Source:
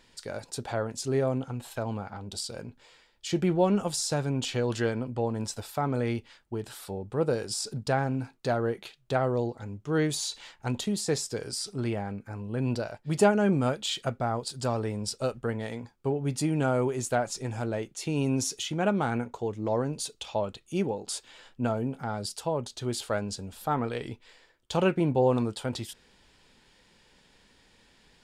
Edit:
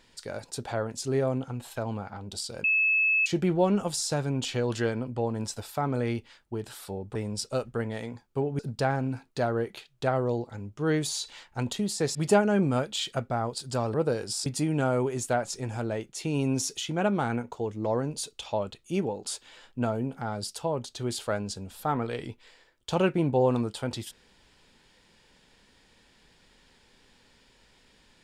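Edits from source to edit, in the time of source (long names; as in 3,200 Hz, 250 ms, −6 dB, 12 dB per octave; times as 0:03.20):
0:02.64–0:03.26: beep over 2,600 Hz −20.5 dBFS
0:07.15–0:07.67: swap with 0:14.84–0:16.28
0:11.23–0:13.05: remove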